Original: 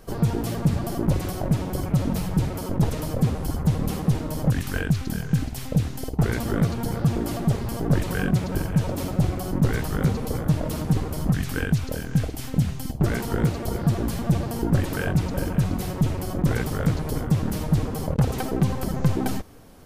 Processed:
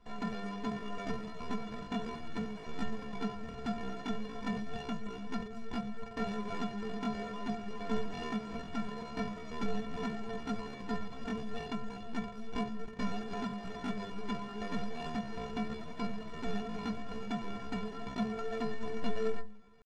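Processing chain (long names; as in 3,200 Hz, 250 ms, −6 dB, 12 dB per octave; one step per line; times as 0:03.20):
each half-wave held at its own peak
mains-hum notches 60/120/180/240 Hz
stiff-string resonator 120 Hz, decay 0.37 s, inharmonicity 0.03
pitch shifter +9.5 semitones
high-frequency loss of the air 130 metres
level −5 dB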